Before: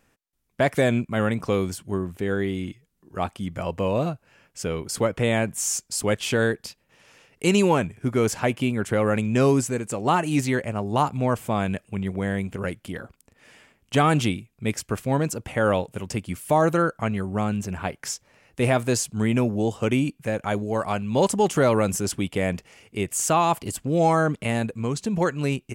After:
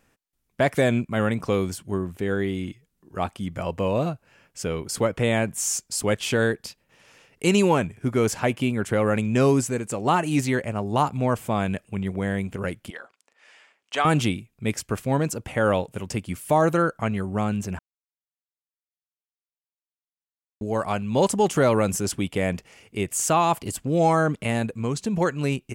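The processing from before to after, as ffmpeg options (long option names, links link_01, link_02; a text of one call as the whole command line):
ffmpeg -i in.wav -filter_complex "[0:a]asettb=1/sr,asplit=3[link_01][link_02][link_03];[link_01]atrim=end=12.904[link_04];[link_02]atrim=start=12.9:end=14.05,asetpts=PTS-STARTPTS,afade=type=in:duration=0.004:curve=qsin,afade=type=out:start_time=1.146:duration=0.004:curve=qsin,highpass=690,lowpass=6800[link_05];[link_03]atrim=start=14.046[link_06];[link_04][link_05]acrossfade=duration=0.004:curve1=hsin:curve2=qsin[link_07];[link_07][link_06]acrossfade=duration=0.004:curve1=qsin:curve2=hsin,asplit=3[link_08][link_09][link_10];[link_08]atrim=end=17.79,asetpts=PTS-STARTPTS,afade=type=out:start_time=17.786:duration=0.004:curve=hsin[link_11];[link_09]atrim=start=17.79:end=20.61,asetpts=PTS-STARTPTS,volume=0[link_12];[link_10]atrim=start=20.61,asetpts=PTS-STARTPTS,afade=type=in:duration=0.004:curve=hsin[link_13];[link_11][link_12][link_13]concat=n=3:v=0:a=1" out.wav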